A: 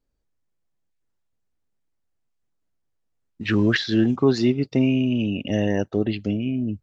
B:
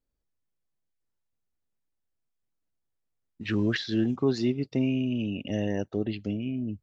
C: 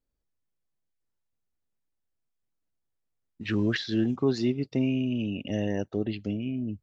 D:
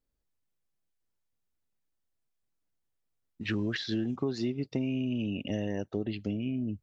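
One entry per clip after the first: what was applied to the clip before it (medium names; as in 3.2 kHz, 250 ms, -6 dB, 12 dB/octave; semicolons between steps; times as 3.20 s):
dynamic bell 1.3 kHz, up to -3 dB, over -35 dBFS, Q 0.97; trim -6.5 dB
no audible change
compression, threshold -27 dBFS, peak gain reduction 8.5 dB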